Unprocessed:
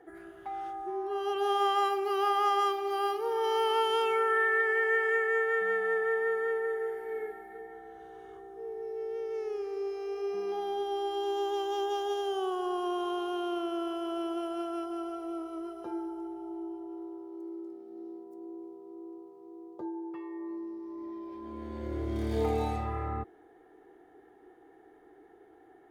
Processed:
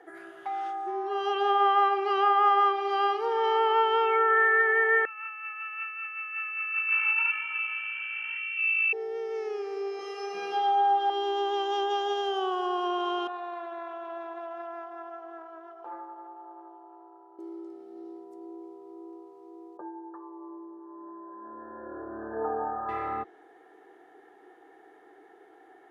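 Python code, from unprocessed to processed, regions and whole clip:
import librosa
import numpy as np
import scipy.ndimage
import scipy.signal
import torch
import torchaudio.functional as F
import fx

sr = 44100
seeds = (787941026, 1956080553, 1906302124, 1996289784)

y = fx.chain(x, sr, fx.over_compress(threshold_db=-36.0, ratio=-0.5),
    fx.freq_invert(carrier_hz=3100), at=(5.05, 8.93))
y = fx.chain(y, sr, fx.low_shelf(hz=77.0, db=-11.5),
    fx.room_flutter(wall_m=3.2, rt60_s=0.53), at=(9.97, 11.1))
y = fx.chain(y, sr, fx.bandpass_q(hz=880.0, q=2.3),
    fx.doppler_dist(depth_ms=0.18), at=(13.27, 17.39))
y = fx.chain(y, sr, fx.brickwall_lowpass(high_hz=1800.0),
    fx.low_shelf(hz=490.0, db=-7.5), at=(19.77, 22.89))
y = fx.env_lowpass_down(y, sr, base_hz=2000.0, full_db=-24.0)
y = fx.weighting(y, sr, curve='A')
y = y * librosa.db_to_amplitude(6.0)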